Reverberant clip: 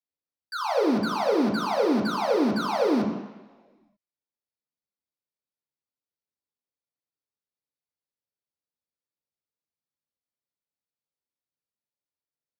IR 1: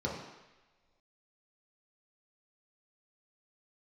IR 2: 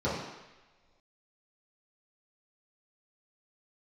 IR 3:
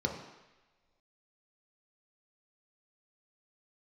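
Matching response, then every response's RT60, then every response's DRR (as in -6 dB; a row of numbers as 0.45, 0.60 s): 1; not exponential, not exponential, not exponential; -4.5, -11.0, 1.0 dB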